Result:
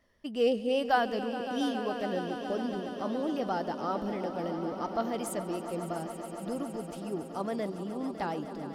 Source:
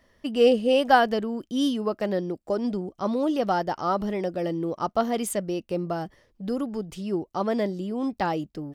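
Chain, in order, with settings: vibrato 8.3 Hz 40 cents; echo with a slow build-up 139 ms, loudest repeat 5, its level -14 dB; trim -8 dB

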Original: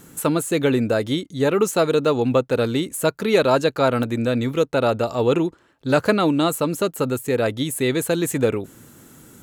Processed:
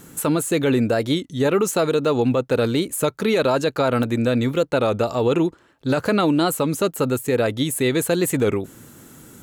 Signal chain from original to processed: peak limiter -12.5 dBFS, peak gain reduction 8.5 dB; warped record 33 1/3 rpm, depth 100 cents; trim +2 dB

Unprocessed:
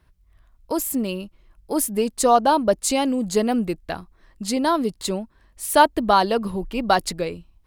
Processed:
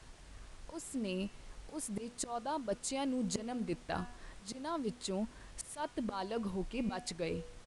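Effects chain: slow attack 795 ms; de-hum 243.2 Hz, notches 13; reverse; compression 8:1, threshold -36 dBFS, peak gain reduction 18.5 dB; reverse; added noise pink -60 dBFS; resampled via 22.05 kHz; trim +2 dB

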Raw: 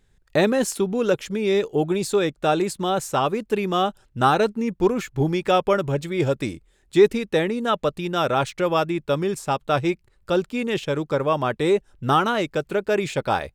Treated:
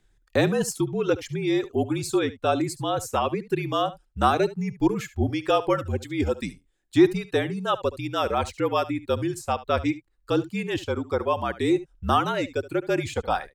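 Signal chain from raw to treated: reverb removal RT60 1.7 s; delay 72 ms -17 dB; frequency shift -48 Hz; trim -2 dB

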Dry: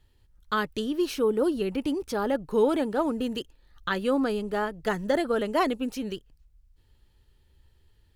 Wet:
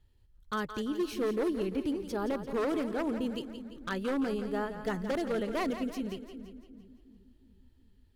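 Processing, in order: bass shelf 350 Hz +6 dB; wavefolder -17 dBFS; two-band feedback delay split 310 Hz, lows 360 ms, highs 171 ms, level -10 dB; trim -8 dB

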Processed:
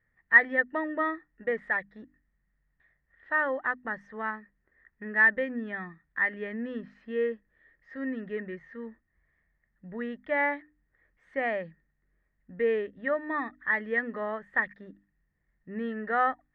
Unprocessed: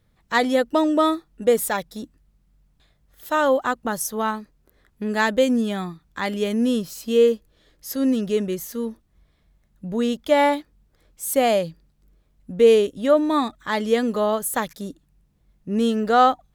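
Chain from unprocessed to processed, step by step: four-pole ladder low-pass 1.9 kHz, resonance 90%; hum notches 50/100/150/200/250/300 Hz

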